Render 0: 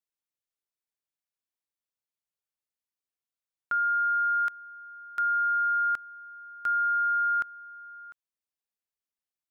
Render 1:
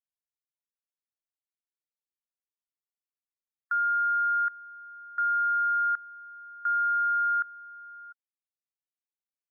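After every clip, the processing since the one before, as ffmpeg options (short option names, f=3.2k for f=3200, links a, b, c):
-af "afftdn=nr=25:nf=-40"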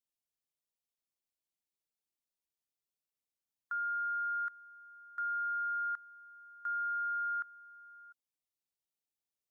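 -af "equalizer=f=1.5k:w=1.5:g=-11.5,volume=1.5dB"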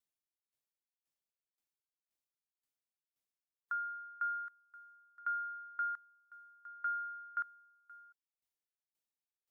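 -af "aeval=exprs='val(0)*pow(10,-24*if(lt(mod(1.9*n/s,1),2*abs(1.9)/1000),1-mod(1.9*n/s,1)/(2*abs(1.9)/1000),(mod(1.9*n/s,1)-2*abs(1.9)/1000)/(1-2*abs(1.9)/1000))/20)':c=same,volume=2.5dB"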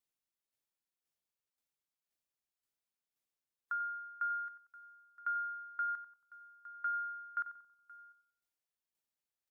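-filter_complex "[0:a]asplit=2[a][b];[b]adelay=92,lowpass=f=1k:p=1,volume=-8dB,asplit=2[c][d];[d]adelay=92,lowpass=f=1k:p=1,volume=0.54,asplit=2[e][f];[f]adelay=92,lowpass=f=1k:p=1,volume=0.54,asplit=2[g][h];[h]adelay=92,lowpass=f=1k:p=1,volume=0.54,asplit=2[i][j];[j]adelay=92,lowpass=f=1k:p=1,volume=0.54,asplit=2[k][l];[l]adelay=92,lowpass=f=1k:p=1,volume=0.54[m];[a][c][e][g][i][k][m]amix=inputs=7:normalize=0"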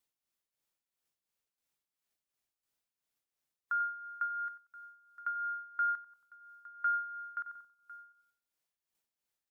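-af "tremolo=f=2.9:d=0.61,volume=5.5dB"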